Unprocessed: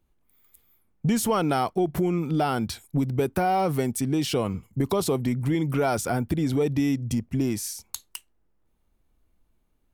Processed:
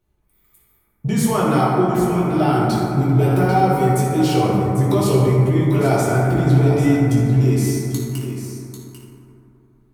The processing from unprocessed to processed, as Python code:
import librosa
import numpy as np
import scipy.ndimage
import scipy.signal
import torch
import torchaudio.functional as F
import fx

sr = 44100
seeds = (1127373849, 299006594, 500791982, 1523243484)

p1 = x + fx.echo_single(x, sr, ms=794, db=-9.5, dry=0)
p2 = fx.rev_fdn(p1, sr, rt60_s=3.0, lf_ratio=1.0, hf_ratio=0.3, size_ms=47.0, drr_db=-8.0)
y = F.gain(torch.from_numpy(p2), -2.0).numpy()